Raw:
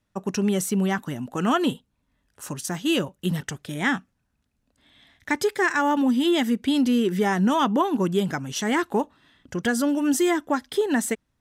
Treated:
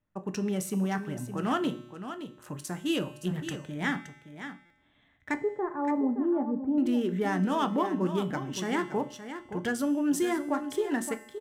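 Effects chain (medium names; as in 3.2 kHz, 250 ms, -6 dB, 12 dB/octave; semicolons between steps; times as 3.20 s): local Wiener filter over 9 samples; 5.34–6.78 s: low-pass 1 kHz 24 dB/octave; feedback comb 120 Hz, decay 1.1 s, harmonics odd, mix 70%; on a send: delay 569 ms -10.5 dB; on the sum: simulated room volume 130 m³, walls furnished, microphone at 0.47 m; buffer glitch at 4.65 s, samples 256, times 8; trim +3 dB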